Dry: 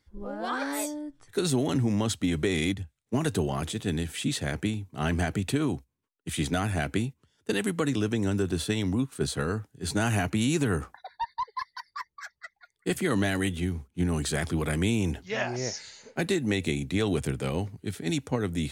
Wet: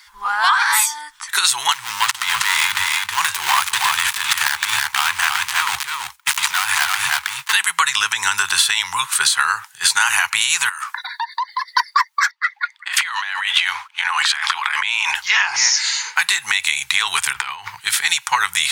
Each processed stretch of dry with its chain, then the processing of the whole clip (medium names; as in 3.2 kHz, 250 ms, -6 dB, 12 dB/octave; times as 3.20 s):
1.72–7.53 s: dead-time distortion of 0.21 ms + compressor with a negative ratio -32 dBFS + delay 318 ms -6 dB
10.69–11.68 s: high-pass 980 Hz 24 dB/octave + compression 16:1, threshold -47 dBFS
12.31–15.15 s: three-band isolator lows -21 dB, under 470 Hz, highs -19 dB, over 4.6 kHz + compressor with a negative ratio -44 dBFS + three bands expanded up and down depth 40%
17.33–17.81 s: peaking EQ 9.7 kHz -14.5 dB 1.7 oct + hum notches 60/120/180 Hz + compressor with a negative ratio -36 dBFS, ratio -0.5
whole clip: elliptic high-pass 930 Hz, stop band 40 dB; compression 10:1, threshold -41 dBFS; loudness maximiser +30 dB; trim -1 dB